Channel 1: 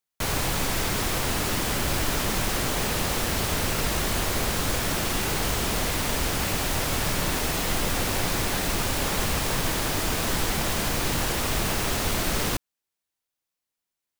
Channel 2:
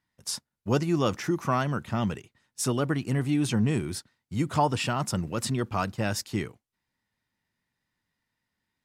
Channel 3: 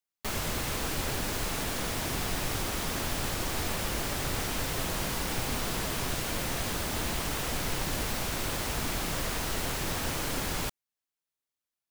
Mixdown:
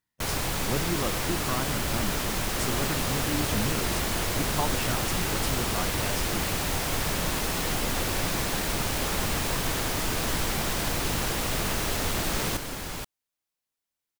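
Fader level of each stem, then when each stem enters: −3.0, −6.5, −3.0 decibels; 0.00, 0.00, 2.35 seconds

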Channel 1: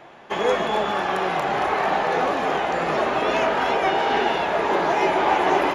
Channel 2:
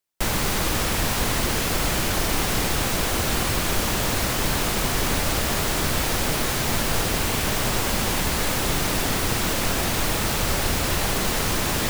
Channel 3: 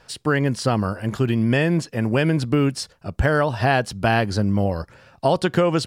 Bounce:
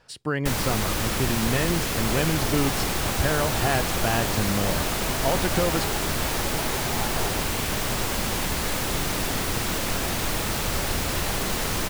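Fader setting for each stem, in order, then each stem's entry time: −15.0, −3.0, −6.5 decibels; 1.70, 0.25, 0.00 seconds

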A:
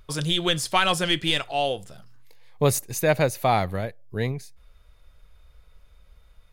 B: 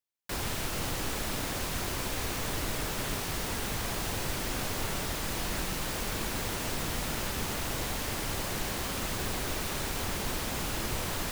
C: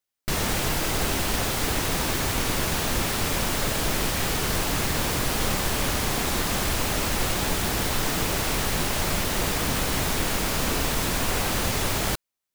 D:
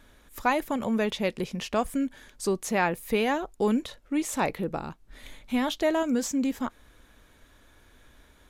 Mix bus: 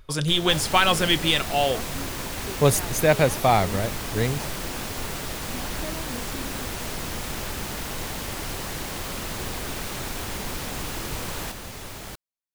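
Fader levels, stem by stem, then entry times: +2.0, +0.5, −12.5, −13.0 decibels; 0.00, 0.20, 0.00, 0.00 seconds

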